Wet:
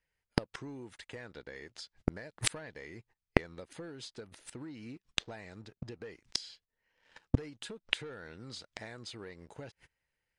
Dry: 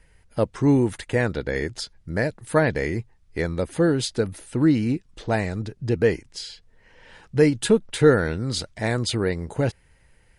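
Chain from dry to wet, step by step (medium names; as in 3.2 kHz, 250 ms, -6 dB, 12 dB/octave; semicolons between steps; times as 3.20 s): tilt EQ +2.5 dB/octave; waveshaping leveller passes 2; gate -38 dBFS, range -36 dB; distance through air 90 m; compression 16:1, threshold -22 dBFS, peak gain reduction 13 dB; inverted gate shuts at -28 dBFS, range -37 dB; trim +17 dB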